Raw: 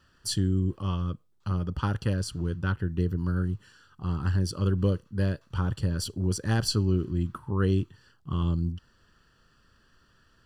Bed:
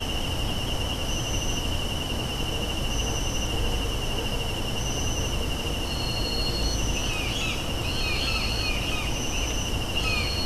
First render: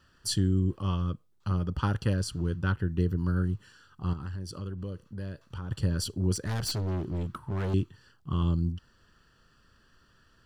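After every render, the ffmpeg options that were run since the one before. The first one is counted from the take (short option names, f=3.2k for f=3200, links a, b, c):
-filter_complex "[0:a]asettb=1/sr,asplit=3[a][b][c];[a]atrim=end=4.134[d];[b]atrim=start=4.13:end=5.71,asetpts=PTS-STARTPTS,afade=t=in:d=0.004:c=qsin,afade=t=out:st=1.576:d=0.004:c=qsin,acompressor=threshold=-37dB:ratio=3:attack=3.2:release=140:knee=1:detection=peak[e];[c]atrim=start=5.706[f];[d][e]acrossfade=d=0.004:c1=hsin:c2=qsin[g];[g][f]acrossfade=d=0.004:c1=qsin:c2=hsin,asettb=1/sr,asplit=3[h][i][j];[h]atrim=end=6.354[k];[i]atrim=start=6.35:end=7.74,asetpts=PTS-STARTPTS,afade=t=in:d=0.004:c=qsin,afade=t=out:st=1.386:d=0.004:c=qsin,asoftclip=type=hard:threshold=-28dB[l];[j]atrim=start=7.736[m];[k][l]acrossfade=d=0.004:c1=hsin:c2=qsin[n];[n][m]acrossfade=d=0.004:c1=qsin:c2=hsin"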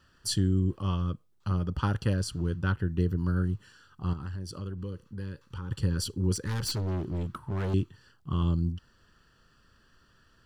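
-filter_complex "[0:a]asettb=1/sr,asplit=3[a][b][c];[a]atrim=end=4.784[d];[b]atrim=start=4.78:end=6.77,asetpts=PTS-STARTPTS,afade=t=in:d=0.004:c=qsin,afade=t=out:st=1.986:d=0.004:c=qsin,asuperstop=centerf=670:order=12:qfactor=2.8[e];[c]atrim=start=6.766[f];[d][e]acrossfade=d=0.004:c1=hsin:c2=qsin[g];[g][f]acrossfade=d=0.004:c1=qsin:c2=hsin"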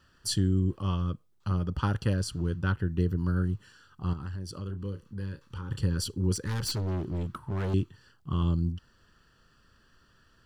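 -filter_complex "[0:a]asettb=1/sr,asplit=3[a][b][c];[a]atrim=end=4.664[d];[b]atrim=start=4.66:end=5.81,asetpts=PTS-STARTPTS,afade=t=in:d=0.004:c=qsin,afade=t=out:st=1.146:d=0.004:c=qsin,asplit=2[e][f];[f]adelay=30,volume=-9.5dB[g];[e][g]amix=inputs=2:normalize=0,atrim=end_sample=50715[h];[c]atrim=start=5.806[i];[d][h]acrossfade=d=0.004:c1=hsin:c2=qsin[j];[j][i]acrossfade=d=0.004:c1=qsin:c2=hsin"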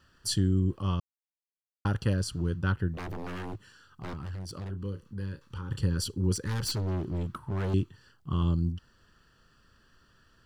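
-filter_complex "[0:a]asplit=3[a][b][c];[a]afade=t=out:st=2.93:d=0.02[d];[b]aeval=exprs='0.0237*(abs(mod(val(0)/0.0237+3,4)-2)-1)':c=same,afade=t=in:st=2.93:d=0.02,afade=t=out:st=4.69:d=0.02[e];[c]afade=t=in:st=4.69:d=0.02[f];[d][e][f]amix=inputs=3:normalize=0,asplit=3[g][h][i];[g]atrim=end=1,asetpts=PTS-STARTPTS,afade=t=out:st=0.996:d=0.004:c=hsin[j];[h]atrim=start=1:end=1.85,asetpts=PTS-STARTPTS,volume=0[k];[i]atrim=start=1.85,asetpts=PTS-STARTPTS,afade=t=in:d=0.004:c=hsin[l];[j][k][l]concat=n=3:v=0:a=1"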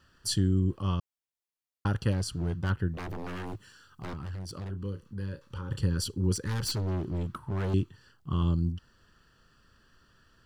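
-filter_complex "[0:a]asplit=3[a][b][c];[a]afade=t=out:st=2.11:d=0.02[d];[b]volume=25dB,asoftclip=hard,volume=-25dB,afade=t=in:st=2.11:d=0.02,afade=t=out:st=2.69:d=0.02[e];[c]afade=t=in:st=2.69:d=0.02[f];[d][e][f]amix=inputs=3:normalize=0,asettb=1/sr,asplit=3[g][h][i];[g]atrim=end=3.464[j];[h]atrim=start=3.46:end=4.06,asetpts=PTS-STARTPTS,afade=t=in:d=0.004:c=qsin,afade=t=out:st=0.596:d=0.004:c=qsin,highshelf=f=6k:g=6[k];[i]atrim=start=4.056[l];[j][k]acrossfade=d=0.004:c1=hsin:c2=qsin[m];[m][l]acrossfade=d=0.004:c1=qsin:c2=hsin,asettb=1/sr,asplit=3[n][o][p];[n]atrim=end=5.284[q];[o]atrim=start=5.28:end=5.79,asetpts=PTS-STARTPTS,afade=t=in:d=0.004:c=qsin,afade=t=out:st=0.506:d=0.004:c=qsin,equalizer=f=570:w=3.5:g=9.5[r];[p]atrim=start=5.786[s];[q][r]acrossfade=d=0.004:c1=hsin:c2=qsin[t];[t][s]acrossfade=d=0.004:c1=qsin:c2=hsin"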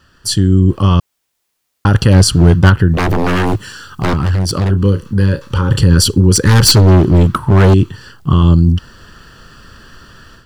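-af "dynaudnorm=f=470:g=3:m=12dB,alimiter=level_in=12dB:limit=-1dB:release=50:level=0:latency=1"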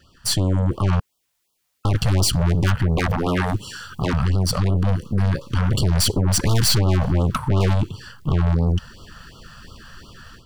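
-af "aeval=exprs='(tanh(6.31*val(0)+0.55)-tanh(0.55))/6.31':c=same,afftfilt=real='re*(1-between(b*sr/1024,300*pow(2000/300,0.5+0.5*sin(2*PI*2.8*pts/sr))/1.41,300*pow(2000/300,0.5+0.5*sin(2*PI*2.8*pts/sr))*1.41))':imag='im*(1-between(b*sr/1024,300*pow(2000/300,0.5+0.5*sin(2*PI*2.8*pts/sr))/1.41,300*pow(2000/300,0.5+0.5*sin(2*PI*2.8*pts/sr))*1.41))':win_size=1024:overlap=0.75"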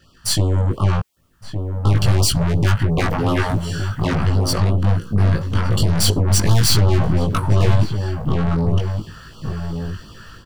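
-filter_complex "[0:a]asplit=2[a][b];[b]adelay=19,volume=-2.5dB[c];[a][c]amix=inputs=2:normalize=0,asplit=2[d][e];[e]adelay=1166,volume=-7dB,highshelf=f=4k:g=-26.2[f];[d][f]amix=inputs=2:normalize=0"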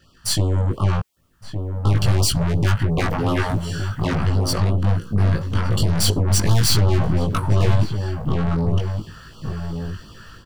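-af "volume=-2dB"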